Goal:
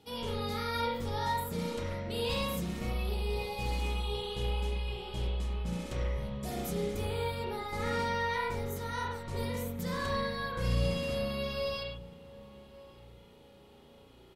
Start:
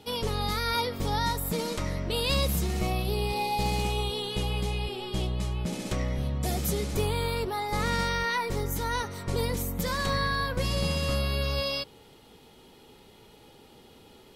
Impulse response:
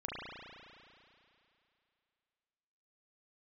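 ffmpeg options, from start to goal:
-filter_complex "[0:a]asplit=2[link_01][link_02];[link_02]adelay=1160,lowpass=frequency=930:poles=1,volume=-17dB,asplit=2[link_03][link_04];[link_04]adelay=1160,lowpass=frequency=930:poles=1,volume=0.37,asplit=2[link_05][link_06];[link_06]adelay=1160,lowpass=frequency=930:poles=1,volume=0.37[link_07];[link_01][link_03][link_05][link_07]amix=inputs=4:normalize=0[link_08];[1:a]atrim=start_sample=2205,atrim=end_sample=6615[link_09];[link_08][link_09]afir=irnorm=-1:irlink=0,volume=-6dB"

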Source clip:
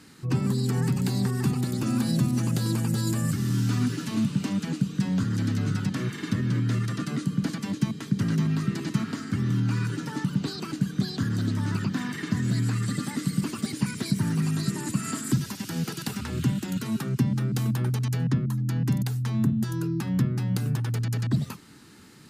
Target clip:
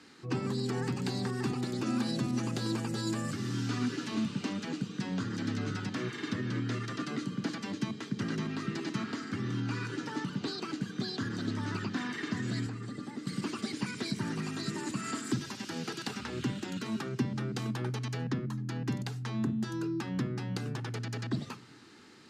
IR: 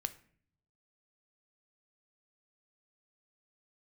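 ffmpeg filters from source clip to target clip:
-filter_complex "[0:a]acrossover=split=240 7100:gain=0.141 1 0.1[link_01][link_02][link_03];[link_01][link_02][link_03]amix=inputs=3:normalize=0,asettb=1/sr,asplit=3[link_04][link_05][link_06];[link_04]atrim=end=12.664[link_07];[link_05]atrim=start=12.66:end=13.27,asetpts=PTS-STARTPTS,afade=type=in:duration=0.004:curve=qsin,afade=type=out:start_time=0.606:duration=0.004:curve=qsin,acrossover=split=450|990[link_08][link_09][link_10];[link_08]acompressor=threshold=-37dB:ratio=4[link_11];[link_09]acompressor=threshold=-51dB:ratio=4[link_12];[link_10]acompressor=threshold=-53dB:ratio=4[link_13];[link_11][link_12][link_13]amix=inputs=3:normalize=0[link_14];[link_06]atrim=start=13.266[link_15];[link_07][link_14]acrossfade=duration=0.004:curve1=hsin:curve2=qsin[link_16];[link_16][link_15]acrossfade=duration=0.004:curve1=qsin:curve2=hsin,asplit=2[link_17][link_18];[1:a]atrim=start_sample=2205,lowshelf=frequency=150:gain=11[link_19];[link_18][link_19]afir=irnorm=-1:irlink=0,volume=1dB[link_20];[link_17][link_20]amix=inputs=2:normalize=0,volume=-8dB"

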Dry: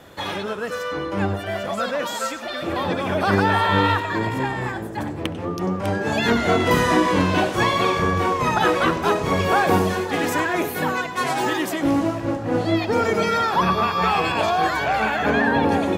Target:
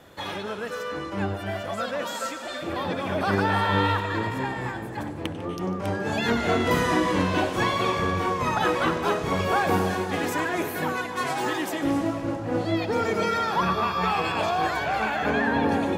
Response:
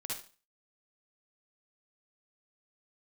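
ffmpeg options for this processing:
-filter_complex "[0:a]asplit=2[link_01][link_02];[1:a]atrim=start_sample=2205,asetrate=23814,aresample=44100,adelay=149[link_03];[link_02][link_03]afir=irnorm=-1:irlink=0,volume=-15dB[link_04];[link_01][link_04]amix=inputs=2:normalize=0,volume=-5dB"

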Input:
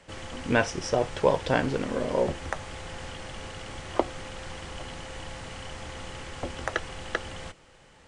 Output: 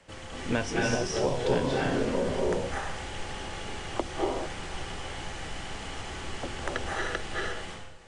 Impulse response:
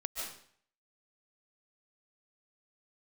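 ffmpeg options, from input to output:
-filter_complex "[1:a]atrim=start_sample=2205,afade=type=out:start_time=0.33:duration=0.01,atrim=end_sample=14994,asetrate=26901,aresample=44100[link_01];[0:a][link_01]afir=irnorm=-1:irlink=0,acrossover=split=380|3000[link_02][link_03][link_04];[link_03]acompressor=threshold=-26dB:ratio=6[link_05];[link_02][link_05][link_04]amix=inputs=3:normalize=0,volume=-3dB"

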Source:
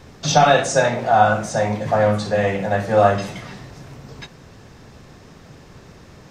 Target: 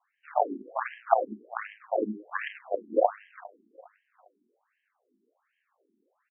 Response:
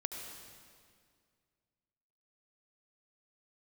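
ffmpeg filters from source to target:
-af "alimiter=limit=-7dB:level=0:latency=1:release=215,flanger=delay=17.5:depth=6.9:speed=1.9,aeval=exprs='0.422*(cos(1*acos(clip(val(0)/0.422,-1,1)))-cos(1*PI/2))+0.133*(cos(3*acos(clip(val(0)/0.422,-1,1)))-cos(3*PI/2))+0.0299*(cos(4*acos(clip(val(0)/0.422,-1,1)))-cos(4*PI/2))':channel_layout=same,aecho=1:1:405|810|1215:0.0794|0.0326|0.0134,afftfilt=real='re*between(b*sr/1024,270*pow(2300/270,0.5+0.5*sin(2*PI*1.3*pts/sr))/1.41,270*pow(2300/270,0.5+0.5*sin(2*PI*1.3*pts/sr))*1.41)':imag='im*between(b*sr/1024,270*pow(2300/270,0.5+0.5*sin(2*PI*1.3*pts/sr))/1.41,270*pow(2300/270,0.5+0.5*sin(2*PI*1.3*pts/sr))*1.41)':win_size=1024:overlap=0.75,volume=6.5dB"

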